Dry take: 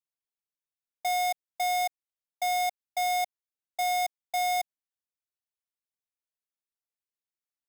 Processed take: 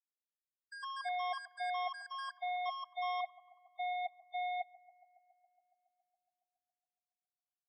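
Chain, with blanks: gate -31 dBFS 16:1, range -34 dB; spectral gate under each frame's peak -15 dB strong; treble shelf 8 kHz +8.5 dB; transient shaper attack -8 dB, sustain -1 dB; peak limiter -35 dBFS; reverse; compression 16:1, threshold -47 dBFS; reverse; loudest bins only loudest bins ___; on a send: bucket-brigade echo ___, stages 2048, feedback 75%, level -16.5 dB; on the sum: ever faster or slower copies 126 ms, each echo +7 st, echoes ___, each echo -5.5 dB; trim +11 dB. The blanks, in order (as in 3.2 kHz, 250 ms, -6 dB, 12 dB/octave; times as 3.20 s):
8, 139 ms, 2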